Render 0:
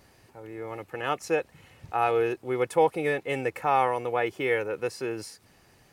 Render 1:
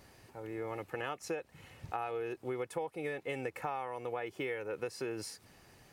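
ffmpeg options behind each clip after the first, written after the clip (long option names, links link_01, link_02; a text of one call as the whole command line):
ffmpeg -i in.wav -af "acompressor=threshold=-33dB:ratio=12,volume=-1dB" out.wav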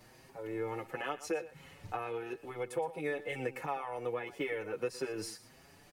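ffmpeg -i in.wav -filter_complex "[0:a]acrossover=split=100[link_01][link_02];[link_01]aeval=exprs='max(val(0),0)':channel_layout=same[link_03];[link_02]aecho=1:1:118:0.168[link_04];[link_03][link_04]amix=inputs=2:normalize=0,asplit=2[link_05][link_06];[link_06]adelay=6.2,afreqshift=1.5[link_07];[link_05][link_07]amix=inputs=2:normalize=1,volume=4dB" out.wav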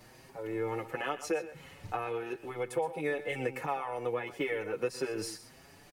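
ffmpeg -i in.wav -af "aecho=1:1:133:0.15,volume=3dB" out.wav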